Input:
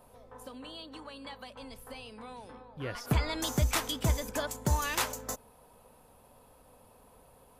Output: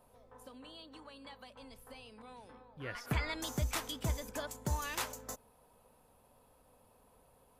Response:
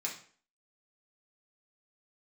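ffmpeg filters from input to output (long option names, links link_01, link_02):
-filter_complex "[0:a]asettb=1/sr,asplit=3[link_01][link_02][link_03];[link_01]atrim=end=2.224[link_04];[link_02]atrim=start=2.22:end=3.34,asetpts=PTS-STARTPTS,afade=type=in:duration=0.004:curve=qsin,afade=type=out:start_time=1.116:duration=0.004:curve=qsin,adynamicequalizer=threshold=0.00224:dfrequency=1900:dqfactor=1.3:tfrequency=1900:tqfactor=1.3:attack=5:release=100:ratio=0.375:range=4:mode=boostabove:tftype=bell[link_05];[link_03]atrim=start=3.336[link_06];[link_04][link_05]acrossfade=duration=0.004:curve1=hsin:curve2=qsin[link_07];[link_07][link_06]acrossfade=duration=0.004:curve1=qsin:curve2=hsin,volume=-7dB"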